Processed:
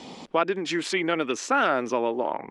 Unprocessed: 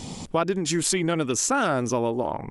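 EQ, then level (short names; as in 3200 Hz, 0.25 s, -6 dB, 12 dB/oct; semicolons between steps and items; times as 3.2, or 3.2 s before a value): three-band isolator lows -24 dB, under 230 Hz, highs -20 dB, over 4600 Hz; dynamic EQ 2100 Hz, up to +5 dB, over -41 dBFS, Q 1.1; 0.0 dB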